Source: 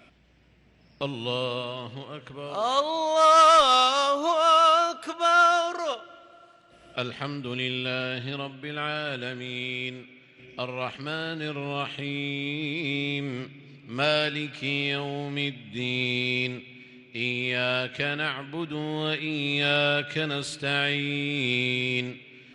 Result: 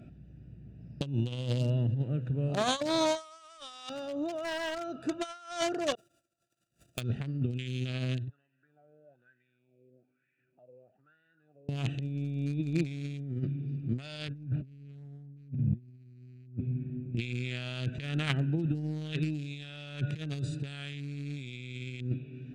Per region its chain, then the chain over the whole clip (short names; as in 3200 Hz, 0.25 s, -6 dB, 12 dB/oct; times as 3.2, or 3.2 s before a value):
3.89–5.01 compressor 2.5:1, threshold -32 dBFS + decimation joined by straight lines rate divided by 2×
5.95–7.01 switching spikes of -25 dBFS + gate -35 dBFS, range -39 dB
8.28–11.69 compressor 3:1, threshold -48 dBFS + wah 1.1 Hz 470–2000 Hz, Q 7.1
14.28–17.17 LPF 1600 Hz + low shelf 180 Hz +11.5 dB
whole clip: Wiener smoothing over 41 samples; graphic EQ 125/500/1000/8000 Hz +10/-5/-5/+9 dB; negative-ratio compressor -33 dBFS, ratio -0.5